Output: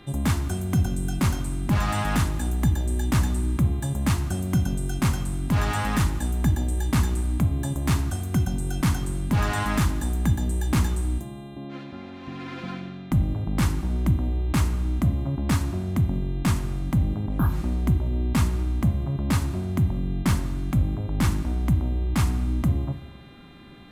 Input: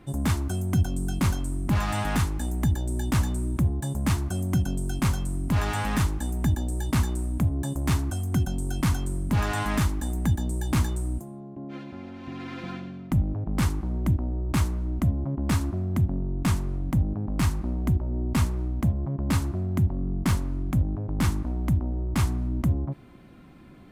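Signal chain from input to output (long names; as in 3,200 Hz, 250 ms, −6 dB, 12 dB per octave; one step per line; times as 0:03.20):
reverb whose tail is shaped and stops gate 450 ms falling, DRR 10 dB
hum with harmonics 400 Hz, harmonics 10, −57 dBFS 0 dB per octave
healed spectral selection 0:17.29–0:17.55, 1,700–11,000 Hz both
level +1.5 dB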